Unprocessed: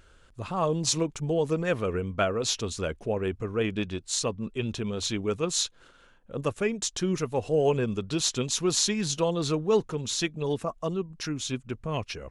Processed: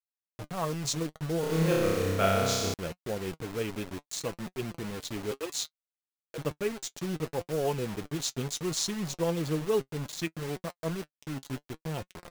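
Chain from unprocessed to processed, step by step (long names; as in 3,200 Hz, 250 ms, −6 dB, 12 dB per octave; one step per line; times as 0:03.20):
adaptive Wiener filter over 41 samples
0:05.31–0:06.38: Butterworth high-pass 300 Hz 96 dB per octave
bit reduction 6 bits
flanger 0.66 Hz, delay 5.3 ms, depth 2.2 ms, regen +54%
0:01.40–0:02.74: flutter between parallel walls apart 5.3 metres, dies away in 1.5 s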